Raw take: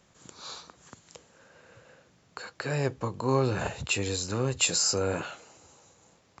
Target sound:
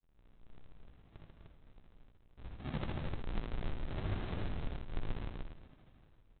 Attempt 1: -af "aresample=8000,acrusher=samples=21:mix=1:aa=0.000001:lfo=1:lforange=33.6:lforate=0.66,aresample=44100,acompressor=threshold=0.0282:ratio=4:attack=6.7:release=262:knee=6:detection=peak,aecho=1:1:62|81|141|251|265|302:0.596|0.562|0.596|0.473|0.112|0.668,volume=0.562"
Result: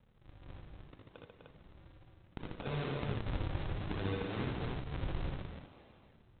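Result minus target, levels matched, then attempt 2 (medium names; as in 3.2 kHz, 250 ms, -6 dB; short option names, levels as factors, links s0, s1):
decimation with a swept rate: distortion -14 dB
-af "aresample=8000,acrusher=samples=79:mix=1:aa=0.000001:lfo=1:lforange=126:lforate=0.66,aresample=44100,acompressor=threshold=0.0282:ratio=4:attack=6.7:release=262:knee=6:detection=peak,aecho=1:1:62|81|141|251|265|302:0.596|0.562|0.596|0.473|0.112|0.668,volume=0.562"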